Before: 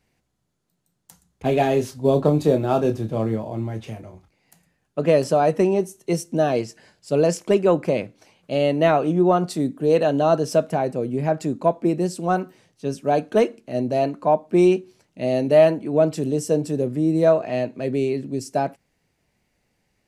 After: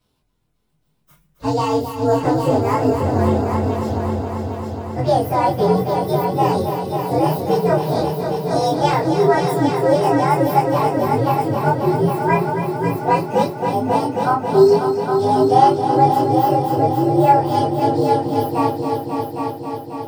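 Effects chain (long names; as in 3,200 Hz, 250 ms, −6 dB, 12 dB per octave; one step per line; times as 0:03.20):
partials spread apart or drawn together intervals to 127%
in parallel at −2 dB: downward compressor, threshold −27 dBFS, peak gain reduction 15.5 dB
on the sum: multi-voice chorus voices 2, 0.61 Hz, delay 25 ms, depth 3.3 ms
echo machine with several playback heads 270 ms, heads all three, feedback 62%, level −9.5 dB
level +4.5 dB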